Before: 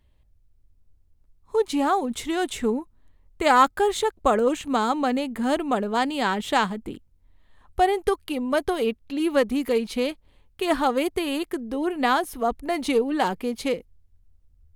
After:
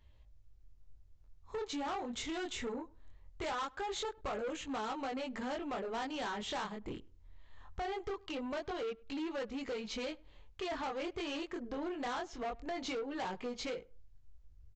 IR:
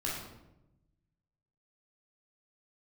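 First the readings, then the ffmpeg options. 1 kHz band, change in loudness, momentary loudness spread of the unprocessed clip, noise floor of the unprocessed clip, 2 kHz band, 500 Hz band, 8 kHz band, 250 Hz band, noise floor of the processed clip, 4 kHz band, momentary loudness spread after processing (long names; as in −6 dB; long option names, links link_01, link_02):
−17.0 dB, −15.5 dB, 7 LU, −61 dBFS, −14.5 dB, −16.0 dB, −12.0 dB, −15.5 dB, −61 dBFS, −11.0 dB, 5 LU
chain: -filter_complex "[0:a]flanger=delay=18.5:depth=6.6:speed=0.21,equalizer=frequency=230:width=1.3:gain=-6.5,acompressor=threshold=-38dB:ratio=2.5,aresample=16000,asoftclip=type=tanh:threshold=-37.5dB,aresample=44100,asplit=2[link_01][link_02];[link_02]adelay=101,lowpass=frequency=1600:poles=1,volume=-23.5dB,asplit=2[link_03][link_04];[link_04]adelay=101,lowpass=frequency=1600:poles=1,volume=0.21[link_05];[link_01][link_03][link_05]amix=inputs=3:normalize=0,volume=3dB"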